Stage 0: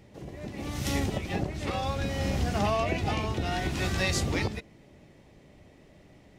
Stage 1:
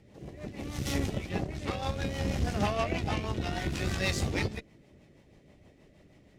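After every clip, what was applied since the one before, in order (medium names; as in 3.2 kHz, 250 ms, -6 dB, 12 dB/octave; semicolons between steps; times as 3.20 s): rotary cabinet horn 6.3 Hz; Chebyshev shaper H 7 -32 dB, 8 -25 dB, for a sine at -14.5 dBFS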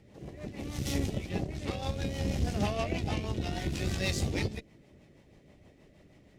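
dynamic bell 1.3 kHz, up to -7 dB, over -49 dBFS, Q 0.92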